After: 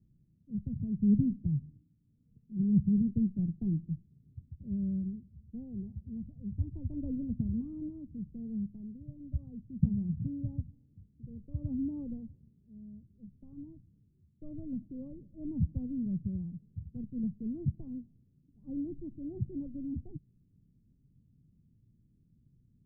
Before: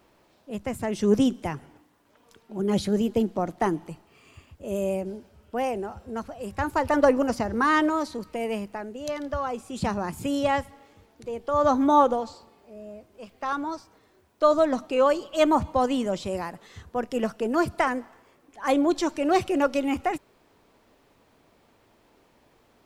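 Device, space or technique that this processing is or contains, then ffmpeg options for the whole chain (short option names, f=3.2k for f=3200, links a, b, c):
the neighbour's flat through the wall: -af "lowpass=f=190:w=0.5412,lowpass=f=190:w=1.3066,equalizer=f=140:t=o:w=0.87:g=7,volume=1dB"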